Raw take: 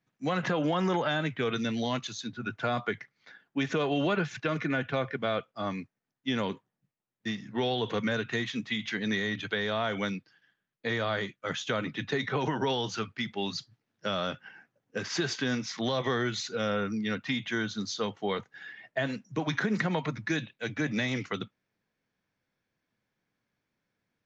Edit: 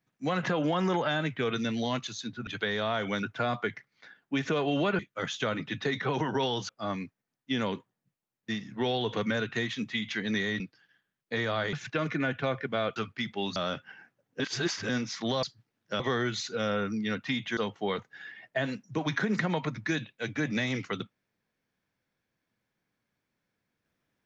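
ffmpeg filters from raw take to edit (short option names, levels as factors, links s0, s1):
-filter_complex "[0:a]asplit=14[s0][s1][s2][s3][s4][s5][s6][s7][s8][s9][s10][s11][s12][s13];[s0]atrim=end=2.472[s14];[s1]atrim=start=9.368:end=10.132[s15];[s2]atrim=start=2.468:end=4.232[s16];[s3]atrim=start=11.258:end=12.962[s17];[s4]atrim=start=5.458:end=9.372[s18];[s5]atrim=start=10.128:end=11.262[s19];[s6]atrim=start=4.228:end=5.462[s20];[s7]atrim=start=12.958:end=13.562[s21];[s8]atrim=start=14.128:end=14.972[s22];[s9]atrim=start=14.968:end=15.462,asetpts=PTS-STARTPTS,areverse[s23];[s10]atrim=start=15.458:end=16.002[s24];[s11]atrim=start=13.558:end=14.132[s25];[s12]atrim=start=15.998:end=17.572[s26];[s13]atrim=start=17.978[s27];[s14][s15]acrossfade=d=0.004:c1=hsin:c2=hsin[s28];[s28][s16]acrossfade=d=0.004:c1=hsin:c2=hsin[s29];[s29][s17]acrossfade=d=0.004:c1=hsin:c2=hsin[s30];[s30][s18]acrossfade=d=0.004:c1=hsin:c2=hsin[s31];[s31][s19]acrossfade=d=0.004:c1=hsin:c2=hsin[s32];[s32][s20]acrossfade=d=0.004:c1=hsin:c2=hsin[s33];[s33][s21]acrossfade=d=0.004:c1=hsin:c2=hsin[s34];[s34][s22]acrossfade=d=0.004:c1=hsin:c2=hsin[s35];[s35][s23]acrossfade=d=0.004:c1=hsin:c2=hsin[s36];[s36][s24]acrossfade=d=0.004:c1=hsin:c2=hsin[s37];[s37][s25]acrossfade=d=0.004:c1=hsin:c2=hsin[s38];[s38][s26]acrossfade=d=0.004:c1=hsin:c2=hsin[s39];[s39][s27]acrossfade=d=0.004:c1=hsin:c2=hsin"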